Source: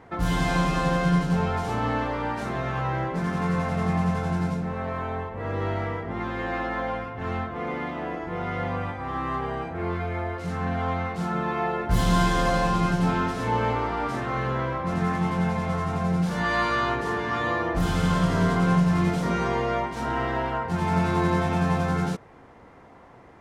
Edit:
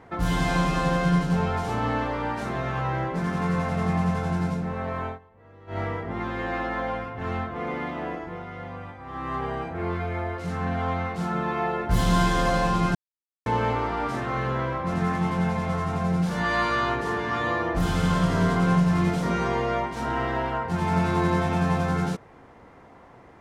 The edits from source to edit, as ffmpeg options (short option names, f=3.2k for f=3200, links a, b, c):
-filter_complex "[0:a]asplit=7[a][b][c][d][e][f][g];[a]atrim=end=5.19,asetpts=PTS-STARTPTS,afade=t=out:st=5.07:d=0.12:silence=0.0841395[h];[b]atrim=start=5.19:end=5.67,asetpts=PTS-STARTPTS,volume=-21.5dB[i];[c]atrim=start=5.67:end=8.46,asetpts=PTS-STARTPTS,afade=t=in:d=0.12:silence=0.0841395,afade=t=out:st=2.42:d=0.37:silence=0.375837[j];[d]atrim=start=8.46:end=9.05,asetpts=PTS-STARTPTS,volume=-8.5dB[k];[e]atrim=start=9.05:end=12.95,asetpts=PTS-STARTPTS,afade=t=in:d=0.37:silence=0.375837,afade=t=out:st=3.896:d=0.004:c=hsin[l];[f]atrim=start=12.95:end=13.46,asetpts=PTS-STARTPTS,volume=0[m];[g]atrim=start=13.46,asetpts=PTS-STARTPTS,afade=t=in:d=0.004:c=hsin[n];[h][i][j][k][l][m][n]concat=n=7:v=0:a=1"